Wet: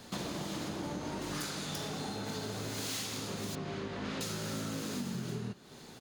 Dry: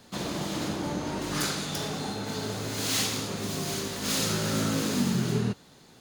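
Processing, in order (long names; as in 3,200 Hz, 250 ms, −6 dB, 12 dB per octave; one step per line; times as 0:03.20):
0:03.55–0:04.21: low-pass filter 2,400 Hz 12 dB per octave
downward compressor 6 to 1, threshold −39 dBFS, peak gain reduction 16 dB
far-end echo of a speakerphone 390 ms, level −15 dB
level +3 dB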